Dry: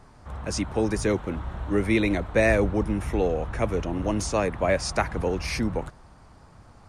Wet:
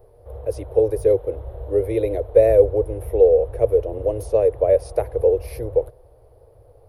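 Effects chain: EQ curve 120 Hz 0 dB, 190 Hz -30 dB, 480 Hz +15 dB, 850 Hz -7 dB, 1300 Hz -17 dB, 3800 Hz -13 dB, 7700 Hz -23 dB, 11000 Hz +9 dB

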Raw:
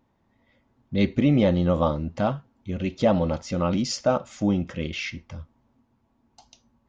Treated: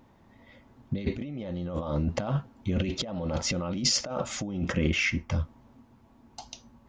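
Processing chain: 4.72–5.3 ten-band EQ 125 Hz -4 dB, 500 Hz -4 dB, 4000 Hz -12 dB; negative-ratio compressor -32 dBFS, ratio -1; gain +2 dB

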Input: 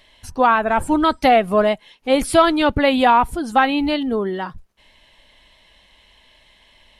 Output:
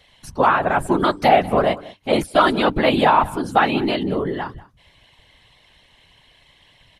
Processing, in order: whisperiser; de-hum 98.53 Hz, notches 3; downsampling 32000 Hz; echo 0.191 s -20 dB; 2.12–2.54 expander -15 dBFS; gain -1 dB

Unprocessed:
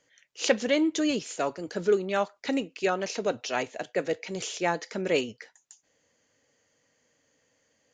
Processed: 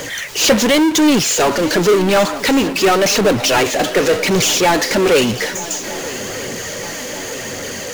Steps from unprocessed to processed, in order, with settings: phaser 0.92 Hz, delay 3.9 ms, feedback 40%; power-law curve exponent 0.35; swung echo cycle 1.245 s, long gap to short 3:1, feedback 60%, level -17.5 dB; gain +1.5 dB

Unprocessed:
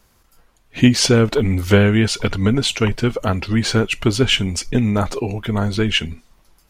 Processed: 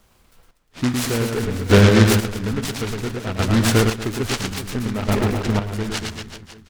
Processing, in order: reverse bouncing-ball echo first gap 0.11 s, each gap 1.15×, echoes 5; chopper 0.59 Hz, depth 65%, duty 30%; noise-modulated delay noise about 1300 Hz, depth 0.093 ms

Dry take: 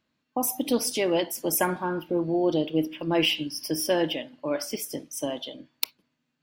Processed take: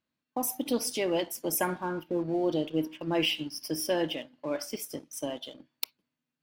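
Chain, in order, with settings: sample leveller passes 1; gain -8 dB

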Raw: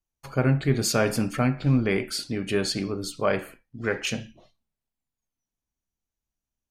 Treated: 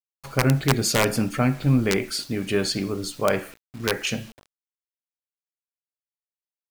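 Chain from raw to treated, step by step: wrapped overs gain 12 dB; requantised 8-bit, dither none; gain +2 dB

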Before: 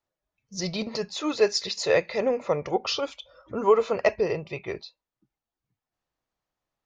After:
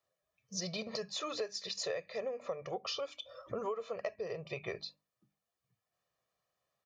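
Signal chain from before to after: HPF 110 Hz 12 dB/oct; notches 50/100/150/200/250/300 Hz; comb 1.7 ms, depth 60%; compressor 8:1, threshold -36 dBFS, peak gain reduction 22.5 dB

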